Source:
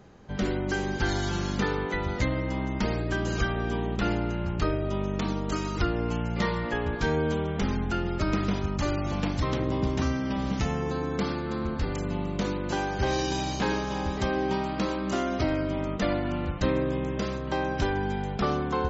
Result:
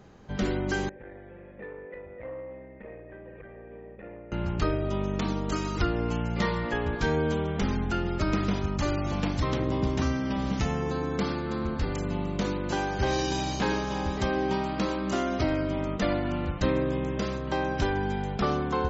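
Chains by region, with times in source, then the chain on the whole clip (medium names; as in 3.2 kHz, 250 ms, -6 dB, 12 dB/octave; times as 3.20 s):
0.89–4.32 s: cascade formant filter e + distance through air 170 m + transformer saturation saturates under 450 Hz
whole clip: none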